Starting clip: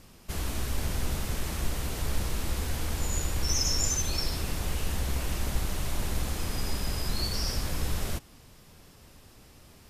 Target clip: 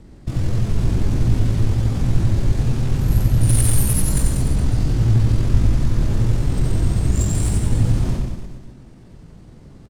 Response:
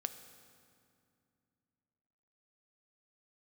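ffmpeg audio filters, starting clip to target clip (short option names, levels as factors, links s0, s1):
-filter_complex "[0:a]bass=f=250:g=12,treble=f=4000:g=4,acrossover=split=150|2800[s0][s1][s2];[s2]acontrast=76[s3];[s0][s1][s3]amix=inputs=3:normalize=0,asetrate=74167,aresample=44100,atempo=0.594604,adynamicsmooth=sensitivity=3:basefreq=3500,aecho=1:1:90|189|297.9|417.7|549.5:0.631|0.398|0.251|0.158|0.1"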